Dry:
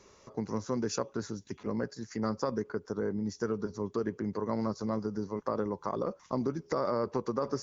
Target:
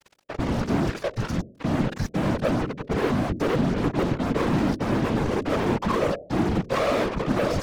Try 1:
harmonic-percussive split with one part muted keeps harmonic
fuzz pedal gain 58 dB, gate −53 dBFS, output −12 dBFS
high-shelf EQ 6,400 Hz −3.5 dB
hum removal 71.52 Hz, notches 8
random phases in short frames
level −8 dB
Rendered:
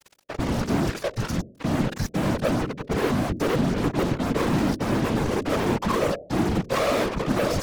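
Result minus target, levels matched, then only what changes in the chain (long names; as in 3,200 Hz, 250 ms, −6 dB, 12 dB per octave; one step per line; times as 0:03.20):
8,000 Hz band +5.5 dB
change: high-shelf EQ 6,400 Hz −14 dB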